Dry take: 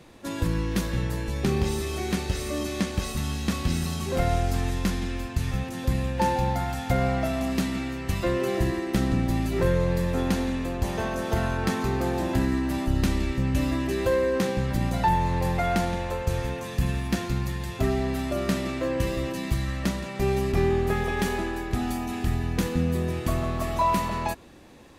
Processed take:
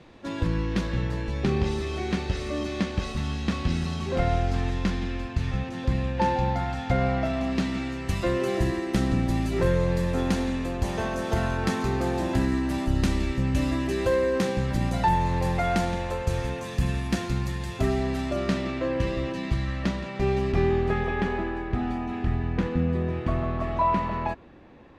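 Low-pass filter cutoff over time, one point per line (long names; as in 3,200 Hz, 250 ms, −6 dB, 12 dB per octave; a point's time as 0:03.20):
0:07.51 4,400 Hz
0:08.10 9,700 Hz
0:17.96 9,700 Hz
0:18.70 4,300 Hz
0:20.75 4,300 Hz
0:21.27 2,300 Hz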